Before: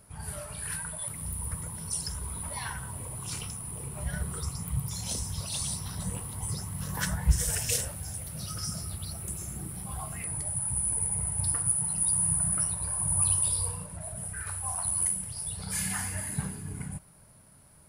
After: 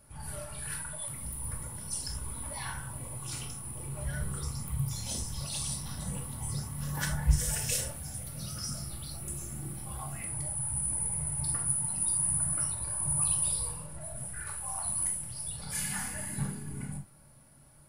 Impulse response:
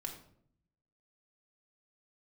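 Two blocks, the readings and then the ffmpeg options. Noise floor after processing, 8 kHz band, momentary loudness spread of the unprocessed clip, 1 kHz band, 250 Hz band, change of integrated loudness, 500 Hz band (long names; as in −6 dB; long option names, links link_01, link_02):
−56 dBFS, −2.5 dB, 12 LU, −2.0 dB, −1.5 dB, −2.5 dB, −2.0 dB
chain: -filter_complex "[1:a]atrim=start_sample=2205,afade=type=out:start_time=0.13:duration=0.01,atrim=end_sample=6174[link_01];[0:a][link_01]afir=irnorm=-1:irlink=0"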